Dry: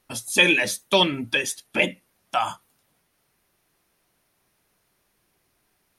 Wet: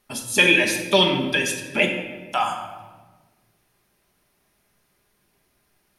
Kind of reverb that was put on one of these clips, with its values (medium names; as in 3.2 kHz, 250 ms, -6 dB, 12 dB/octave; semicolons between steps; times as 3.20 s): simulated room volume 1000 m³, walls mixed, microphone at 1.3 m